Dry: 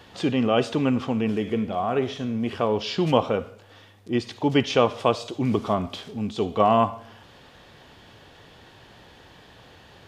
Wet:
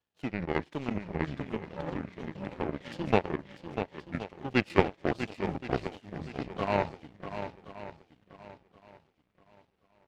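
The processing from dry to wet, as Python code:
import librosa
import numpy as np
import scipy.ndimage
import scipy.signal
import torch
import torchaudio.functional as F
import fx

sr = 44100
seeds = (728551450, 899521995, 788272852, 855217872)

y = fx.pitch_ramps(x, sr, semitones=-9.0, every_ms=731)
y = fx.echo_swing(y, sr, ms=1074, ratio=1.5, feedback_pct=50, wet_db=-5.0)
y = fx.power_curve(y, sr, exponent=2.0)
y = F.gain(torch.from_numpy(y), 2.5).numpy()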